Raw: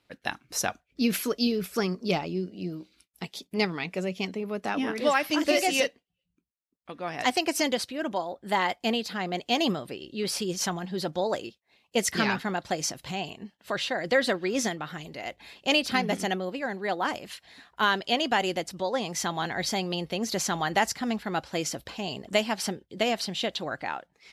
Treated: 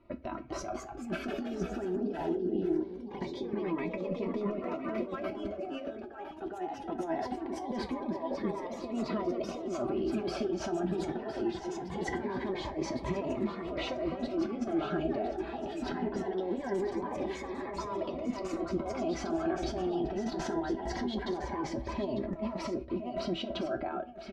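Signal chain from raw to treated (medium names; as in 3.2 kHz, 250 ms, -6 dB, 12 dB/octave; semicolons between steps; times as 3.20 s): low-pass 1 kHz 12 dB/octave; peaking EQ 64 Hz +8.5 dB 0.6 oct; comb 3.1 ms, depth 85%; dynamic bell 660 Hz, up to +5 dB, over -37 dBFS, Q 0.75; compressor with a negative ratio -36 dBFS, ratio -1; peak limiter -27 dBFS, peak gain reduction 10 dB; feedback comb 82 Hz, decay 0.17 s, harmonics all, mix 70%; delay 1010 ms -10 dB; ever faster or slower copies 279 ms, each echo +2 st, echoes 2, each echo -6 dB; reverberation, pre-delay 5 ms, DRR 7.5 dB; Shepard-style phaser rising 0.22 Hz; trim +6.5 dB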